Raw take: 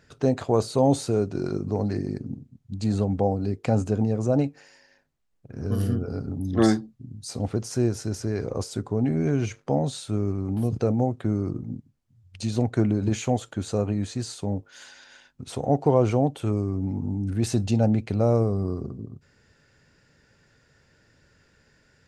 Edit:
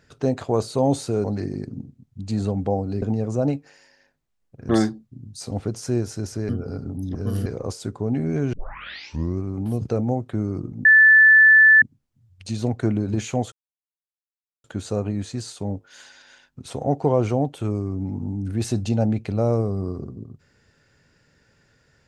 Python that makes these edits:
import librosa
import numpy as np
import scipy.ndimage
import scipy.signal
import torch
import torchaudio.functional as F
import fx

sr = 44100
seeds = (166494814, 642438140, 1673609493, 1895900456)

y = fx.edit(x, sr, fx.cut(start_s=1.24, length_s=0.53),
    fx.cut(start_s=3.55, length_s=0.38),
    fx.swap(start_s=5.6, length_s=0.31, other_s=6.57, other_length_s=1.8),
    fx.tape_start(start_s=9.44, length_s=0.88),
    fx.insert_tone(at_s=11.76, length_s=0.97, hz=1750.0, db=-8.5),
    fx.insert_silence(at_s=13.46, length_s=1.12), tone=tone)